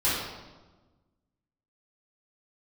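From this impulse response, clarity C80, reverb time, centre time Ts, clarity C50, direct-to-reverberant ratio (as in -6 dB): 2.5 dB, 1.3 s, 79 ms, -0.5 dB, -12.0 dB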